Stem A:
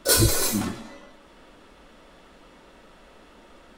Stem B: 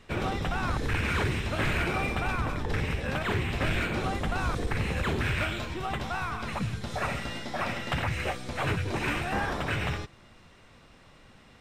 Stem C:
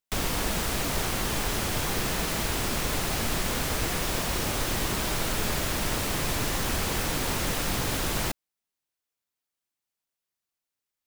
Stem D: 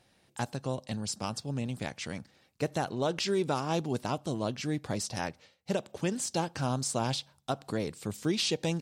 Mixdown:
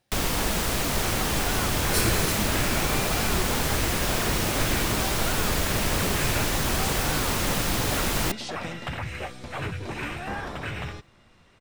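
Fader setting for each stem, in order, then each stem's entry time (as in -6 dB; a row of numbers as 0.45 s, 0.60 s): -8.0 dB, -3.0 dB, +2.5 dB, -7.5 dB; 1.85 s, 0.95 s, 0.00 s, 0.00 s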